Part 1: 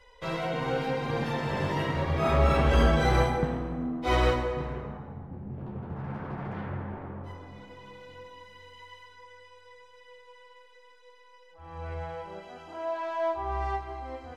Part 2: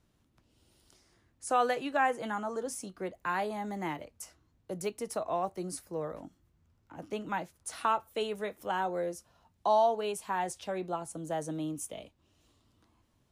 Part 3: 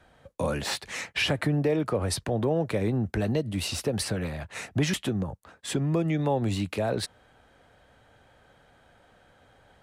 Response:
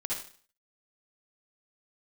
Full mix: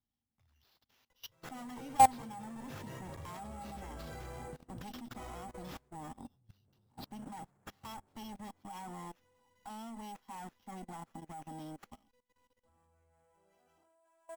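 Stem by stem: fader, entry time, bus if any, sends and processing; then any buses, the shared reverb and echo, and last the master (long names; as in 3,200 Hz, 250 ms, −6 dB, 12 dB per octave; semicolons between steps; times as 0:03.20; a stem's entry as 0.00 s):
−6.5 dB, 1.10 s, no send, upward compression, threshold −39 dBFS
+3.0 dB, 0.00 s, no send, lower of the sound and its delayed copy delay 0.99 ms; gain into a clipping stage and back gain 30 dB; hollow resonant body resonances 240/800/3,300 Hz, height 16 dB, ringing for 85 ms
−1.5 dB, 0.00 s, no send, high-shelf EQ 11,000 Hz +8.5 dB; brick-wall band-stop 130–2,700 Hz; automatic ducking −7 dB, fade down 0.70 s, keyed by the second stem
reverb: not used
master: output level in coarse steps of 18 dB; sample-rate reduction 8,700 Hz, jitter 0%; expander for the loud parts 1.5 to 1, over −58 dBFS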